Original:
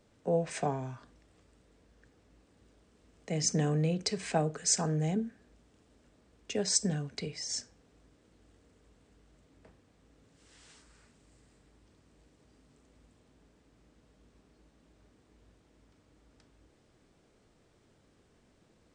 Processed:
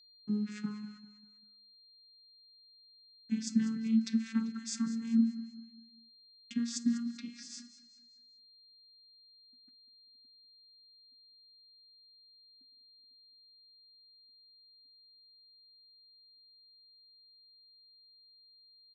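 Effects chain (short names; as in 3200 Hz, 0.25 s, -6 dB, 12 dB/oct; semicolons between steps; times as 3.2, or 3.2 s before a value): vocoder on a gliding note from G#3, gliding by +6 st; Chebyshev band-stop 290–1300 Hz, order 3; gate -57 dBFS, range -44 dB; whine 4200 Hz -61 dBFS; on a send: feedback echo 0.196 s, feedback 41%, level -15.5 dB; on the sum: gain +2 dB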